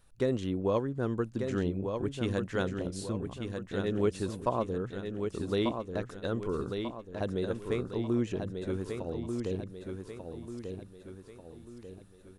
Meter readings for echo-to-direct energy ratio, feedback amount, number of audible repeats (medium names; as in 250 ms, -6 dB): -5.0 dB, 44%, 5